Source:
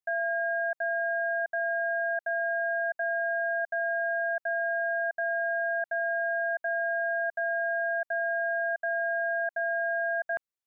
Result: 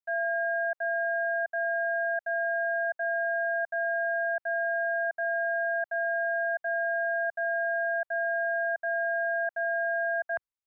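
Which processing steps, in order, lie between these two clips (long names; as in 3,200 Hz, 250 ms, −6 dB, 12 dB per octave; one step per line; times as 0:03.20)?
parametric band 1,000 Hz +8 dB 2.9 octaves
multiband upward and downward expander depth 100%
level −6.5 dB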